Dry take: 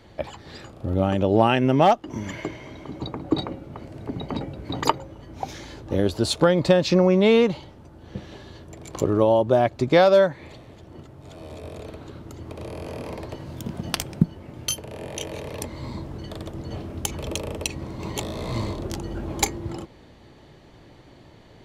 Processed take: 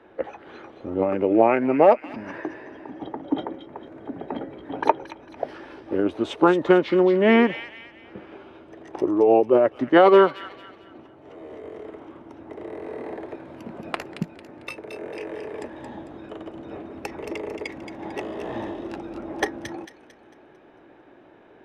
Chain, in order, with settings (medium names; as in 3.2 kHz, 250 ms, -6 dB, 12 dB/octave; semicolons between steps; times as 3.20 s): three-band isolator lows -21 dB, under 290 Hz, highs -21 dB, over 2.6 kHz; formant shift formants -3 st; feedback echo behind a high-pass 224 ms, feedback 39%, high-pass 2.4 kHz, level -6 dB; trim +3 dB